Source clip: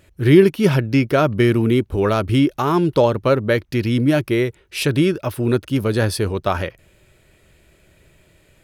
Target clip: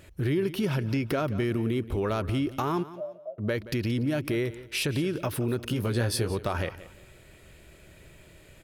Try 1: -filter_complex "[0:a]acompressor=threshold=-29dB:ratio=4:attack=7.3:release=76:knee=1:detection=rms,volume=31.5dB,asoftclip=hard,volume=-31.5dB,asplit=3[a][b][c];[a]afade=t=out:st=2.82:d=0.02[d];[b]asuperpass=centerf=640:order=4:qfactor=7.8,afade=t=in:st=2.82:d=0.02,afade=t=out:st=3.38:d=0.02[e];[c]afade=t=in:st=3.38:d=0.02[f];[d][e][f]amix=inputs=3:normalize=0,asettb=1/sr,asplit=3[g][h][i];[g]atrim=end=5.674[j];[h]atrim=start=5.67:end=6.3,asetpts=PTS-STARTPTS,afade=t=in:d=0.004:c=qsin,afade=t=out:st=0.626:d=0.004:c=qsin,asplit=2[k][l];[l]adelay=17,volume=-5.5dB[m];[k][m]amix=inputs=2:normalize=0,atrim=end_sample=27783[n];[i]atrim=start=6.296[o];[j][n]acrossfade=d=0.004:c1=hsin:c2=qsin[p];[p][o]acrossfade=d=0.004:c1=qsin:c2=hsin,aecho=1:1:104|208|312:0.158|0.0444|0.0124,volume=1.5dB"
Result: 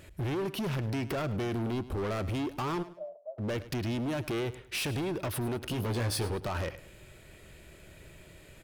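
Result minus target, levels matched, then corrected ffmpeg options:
overloaded stage: distortion +32 dB; echo 72 ms early
-filter_complex "[0:a]acompressor=threshold=-29dB:ratio=4:attack=7.3:release=76:knee=1:detection=rms,volume=20dB,asoftclip=hard,volume=-20dB,asplit=3[a][b][c];[a]afade=t=out:st=2.82:d=0.02[d];[b]asuperpass=centerf=640:order=4:qfactor=7.8,afade=t=in:st=2.82:d=0.02,afade=t=out:st=3.38:d=0.02[e];[c]afade=t=in:st=3.38:d=0.02[f];[d][e][f]amix=inputs=3:normalize=0,asettb=1/sr,asplit=3[g][h][i];[g]atrim=end=5.674[j];[h]atrim=start=5.67:end=6.3,asetpts=PTS-STARTPTS,afade=t=in:d=0.004:c=qsin,afade=t=out:st=0.626:d=0.004:c=qsin,asplit=2[k][l];[l]adelay=17,volume=-5.5dB[m];[k][m]amix=inputs=2:normalize=0,atrim=end_sample=27783[n];[i]atrim=start=6.296[o];[j][n]acrossfade=d=0.004:c1=hsin:c2=qsin[p];[p][o]acrossfade=d=0.004:c1=qsin:c2=hsin,aecho=1:1:176|352|528:0.158|0.0444|0.0124,volume=1.5dB"

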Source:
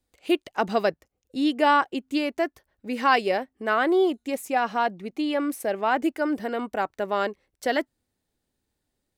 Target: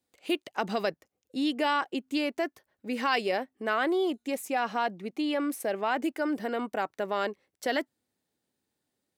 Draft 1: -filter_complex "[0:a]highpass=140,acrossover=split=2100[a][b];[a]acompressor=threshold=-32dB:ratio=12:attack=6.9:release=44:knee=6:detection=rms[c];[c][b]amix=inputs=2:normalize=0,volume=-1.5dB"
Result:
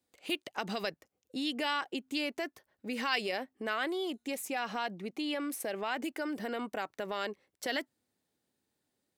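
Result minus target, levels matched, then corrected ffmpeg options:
compressor: peak gain reduction +8.5 dB
-filter_complex "[0:a]highpass=140,acrossover=split=2100[a][b];[a]acompressor=threshold=-22.5dB:ratio=12:attack=6.9:release=44:knee=6:detection=rms[c];[c][b]amix=inputs=2:normalize=0,volume=-1.5dB"

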